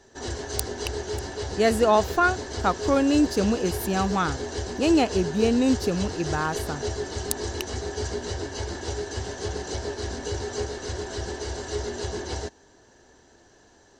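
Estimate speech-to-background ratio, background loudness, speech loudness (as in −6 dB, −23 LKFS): 7.5 dB, −32.0 LKFS, −24.5 LKFS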